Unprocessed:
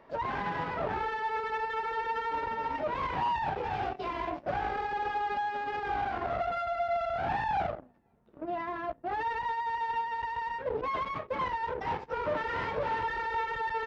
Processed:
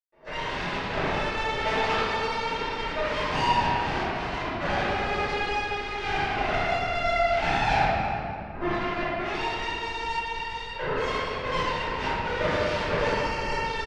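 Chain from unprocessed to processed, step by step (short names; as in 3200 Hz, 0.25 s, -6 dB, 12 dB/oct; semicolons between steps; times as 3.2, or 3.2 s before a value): 1.4–1.87 painted sound rise 450–1500 Hz -38 dBFS; 8.44–8.9 low shelf 240 Hz +11 dB; added harmonics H 7 -14 dB, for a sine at -17 dBFS; 12.93–13.52 Butterworth band-stop 3700 Hz, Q 4.4; echo 0.325 s -18 dB; reverb RT60 2.7 s, pre-delay 0.123 s; gain -1 dB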